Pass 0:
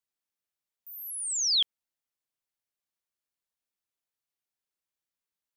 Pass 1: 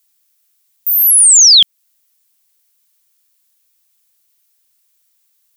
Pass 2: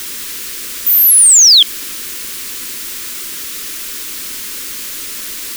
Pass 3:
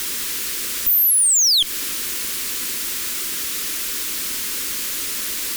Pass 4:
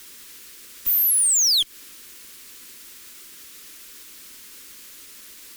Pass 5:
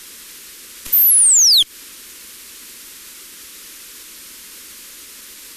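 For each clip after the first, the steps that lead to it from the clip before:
bell 210 Hz +4 dB 1.6 oct; in parallel at +2.5 dB: compressor, threshold -35 dBFS, peak gain reduction 12.5 dB; on the sum: tilt +4.5 dB/oct; gain +6.5 dB
added noise white -28 dBFS; fixed phaser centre 300 Hz, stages 4; in parallel at +2.5 dB: limiter -8.5 dBFS, peak gain reduction 7 dB; on the sum: gain -4 dB
compressor, threshold -10 dBFS, peak gain reduction 6 dB; tube stage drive 14 dB, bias 0.25; gain +1 dB
upward expander 2.5:1, over -27 dBFS; gain -3 dB
brick-wall FIR low-pass 14000 Hz; gain +7.5 dB

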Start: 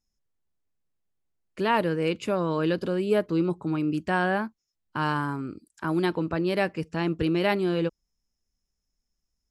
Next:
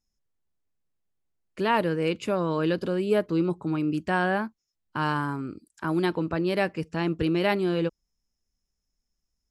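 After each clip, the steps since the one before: nothing audible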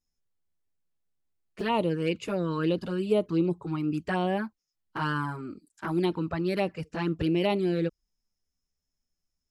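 envelope flanger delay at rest 12 ms, full sweep at -20 dBFS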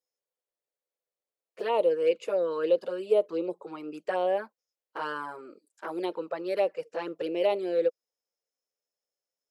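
resonant high-pass 510 Hz, resonance Q 5; gain -5 dB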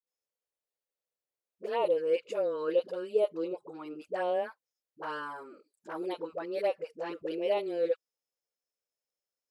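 dispersion highs, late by 72 ms, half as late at 420 Hz; gain -3.5 dB

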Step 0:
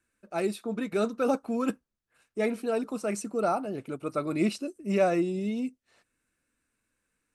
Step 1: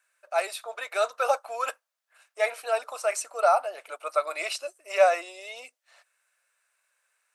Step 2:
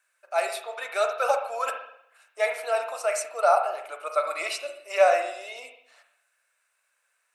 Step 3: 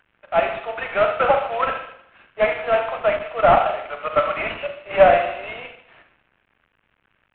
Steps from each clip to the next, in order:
elliptic high-pass 600 Hz, stop band 70 dB; gain +7.5 dB
reverb RT60 0.70 s, pre-delay 39 ms, DRR 5 dB
CVSD 16 kbps; gain +7.5 dB

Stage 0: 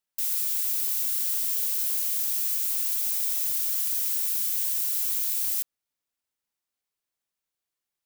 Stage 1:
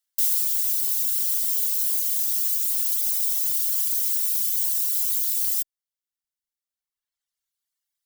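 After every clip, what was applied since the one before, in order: reverb removal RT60 1.7 s; passive tone stack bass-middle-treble 10-0-10; notch 2500 Hz, Q 7; gain +7 dB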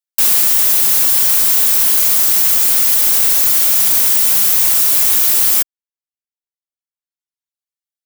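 sample leveller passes 5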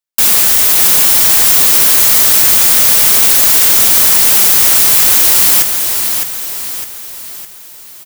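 half-waves squared off; on a send: feedback echo 0.609 s, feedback 47%, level -6 dB; on the sum: gain +2 dB

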